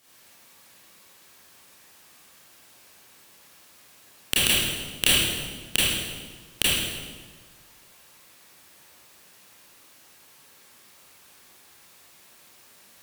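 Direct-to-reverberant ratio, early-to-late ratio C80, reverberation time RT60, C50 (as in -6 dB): -9.5 dB, 0.0 dB, 1.4 s, -3.0 dB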